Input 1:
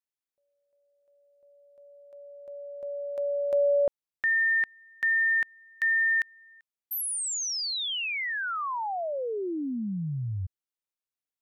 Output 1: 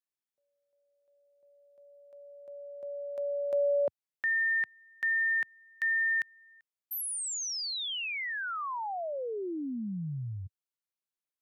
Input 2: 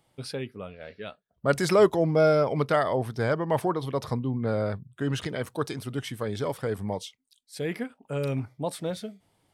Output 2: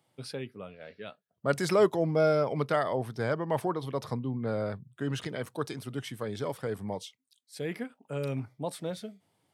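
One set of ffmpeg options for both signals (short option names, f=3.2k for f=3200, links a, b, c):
-af "highpass=f=100:w=0.5412,highpass=f=100:w=1.3066,volume=-4dB"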